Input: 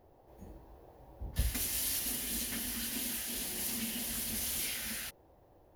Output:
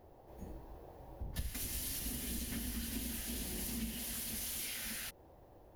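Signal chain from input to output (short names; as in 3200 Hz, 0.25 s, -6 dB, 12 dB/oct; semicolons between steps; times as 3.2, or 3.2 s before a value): octaver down 2 oct, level -5 dB; 1.62–3.95 low shelf 340 Hz +11 dB; compressor 3:1, threshold -43 dBFS, peak gain reduction 13.5 dB; gain +2.5 dB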